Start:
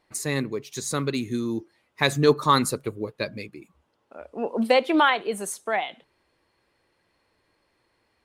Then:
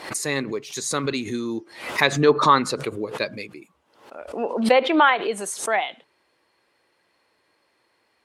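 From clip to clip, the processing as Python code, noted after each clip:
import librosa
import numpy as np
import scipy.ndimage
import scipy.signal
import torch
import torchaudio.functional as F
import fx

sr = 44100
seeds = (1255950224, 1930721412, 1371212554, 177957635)

y = fx.env_lowpass_down(x, sr, base_hz=2700.0, full_db=-16.0)
y = fx.highpass(y, sr, hz=360.0, slope=6)
y = fx.pre_swell(y, sr, db_per_s=100.0)
y = y * 10.0 ** (4.0 / 20.0)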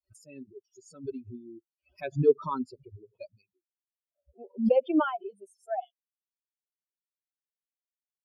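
y = fx.bin_expand(x, sr, power=3.0)
y = np.convolve(y, np.full(22, 1.0 / 22))[:len(y)]
y = fx.notch_cascade(y, sr, direction='rising', hz=0.61)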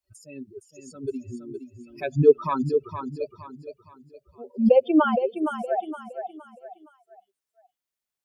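y = fx.echo_feedback(x, sr, ms=466, feedback_pct=36, wet_db=-8)
y = y * 10.0 ** (6.0 / 20.0)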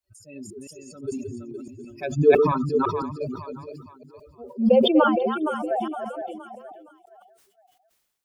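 y = fx.reverse_delay(x, sr, ms=168, wet_db=-7.0)
y = fx.sustainer(y, sr, db_per_s=53.0)
y = y * 10.0 ** (-1.0 / 20.0)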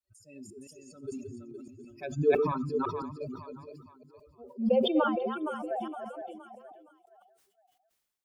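y = fx.comb_fb(x, sr, f0_hz=260.0, decay_s=0.96, harmonics='all', damping=0.0, mix_pct=40)
y = y * 10.0 ** (-4.0 / 20.0)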